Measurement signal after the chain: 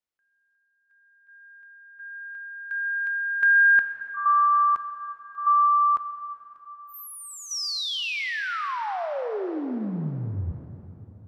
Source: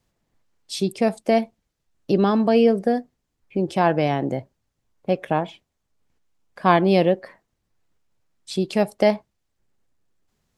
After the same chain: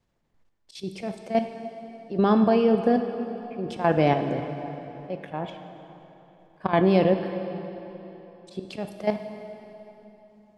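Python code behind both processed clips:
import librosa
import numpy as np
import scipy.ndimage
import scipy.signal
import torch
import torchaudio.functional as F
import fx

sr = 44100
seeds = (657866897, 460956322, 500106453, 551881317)

y = fx.lowpass(x, sr, hz=3300.0, slope=6)
y = fx.auto_swell(y, sr, attack_ms=137.0)
y = fx.level_steps(y, sr, step_db=11)
y = fx.rev_plate(y, sr, seeds[0], rt60_s=3.5, hf_ratio=0.8, predelay_ms=0, drr_db=6.5)
y = y * 10.0 ** (3.0 / 20.0)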